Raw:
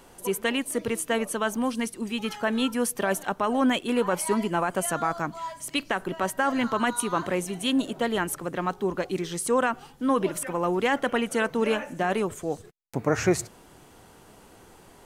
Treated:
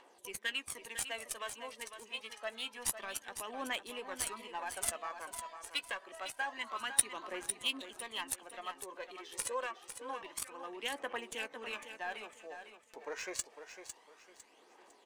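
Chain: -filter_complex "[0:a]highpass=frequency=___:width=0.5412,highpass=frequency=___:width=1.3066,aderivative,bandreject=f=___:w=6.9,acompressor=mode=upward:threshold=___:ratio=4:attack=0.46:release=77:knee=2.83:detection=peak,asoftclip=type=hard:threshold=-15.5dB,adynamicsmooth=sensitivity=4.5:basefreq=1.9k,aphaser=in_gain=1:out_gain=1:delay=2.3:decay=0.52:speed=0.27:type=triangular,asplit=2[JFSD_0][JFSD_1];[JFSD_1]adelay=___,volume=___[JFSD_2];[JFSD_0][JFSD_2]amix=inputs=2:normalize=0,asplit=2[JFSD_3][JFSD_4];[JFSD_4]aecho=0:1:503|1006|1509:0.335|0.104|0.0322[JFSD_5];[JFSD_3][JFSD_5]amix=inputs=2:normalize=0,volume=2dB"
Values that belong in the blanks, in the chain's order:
250, 250, 1.4k, -44dB, 14, -13.5dB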